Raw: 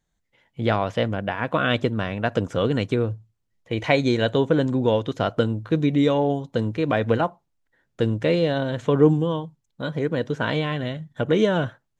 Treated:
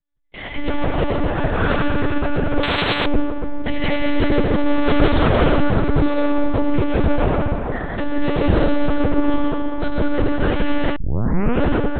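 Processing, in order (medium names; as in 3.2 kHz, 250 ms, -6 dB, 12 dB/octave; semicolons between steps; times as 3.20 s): fade out at the end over 3.15 s; recorder AGC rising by 63 dB/s; gate -44 dBFS, range -20 dB; bass shelf 160 Hz +11 dB; peak limiter -8 dBFS, peak gain reduction 9.5 dB; 4.66–5.51 s: waveshaping leveller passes 5; saturation -20.5 dBFS, distortion -8 dB; reverberation RT60 3.6 s, pre-delay 68 ms, DRR -3 dB; monotone LPC vocoder at 8 kHz 290 Hz; 2.63–3.06 s: spectrum-flattening compressor 4:1; 10.96 s: tape start 0.67 s; trim +3 dB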